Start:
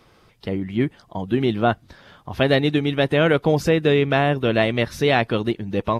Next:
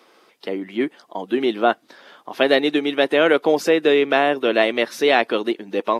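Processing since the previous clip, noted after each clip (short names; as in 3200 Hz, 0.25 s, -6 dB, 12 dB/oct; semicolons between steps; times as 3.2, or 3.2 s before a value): HPF 280 Hz 24 dB/oct; gain +2.5 dB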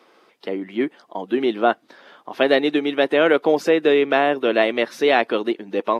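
high shelf 4400 Hz -7.5 dB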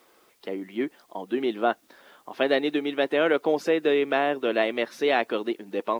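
requantised 10-bit, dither triangular; gain -6 dB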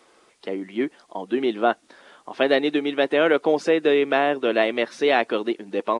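downsampling 22050 Hz; gain +3.5 dB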